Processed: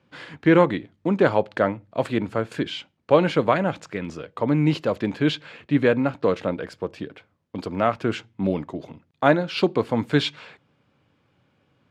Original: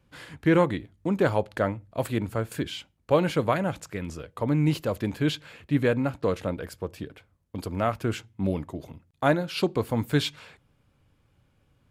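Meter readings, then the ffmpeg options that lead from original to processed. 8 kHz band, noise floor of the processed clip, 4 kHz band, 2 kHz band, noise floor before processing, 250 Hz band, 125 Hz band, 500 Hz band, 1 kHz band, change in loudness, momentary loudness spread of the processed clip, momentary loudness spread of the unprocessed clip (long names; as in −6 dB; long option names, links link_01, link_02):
can't be measured, −68 dBFS, +3.5 dB, +5.0 dB, −67 dBFS, +4.0 dB, +0.5 dB, +5.0 dB, +5.0 dB, +4.0 dB, 14 LU, 13 LU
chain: -af "highpass=160,lowpass=4600,volume=5dB"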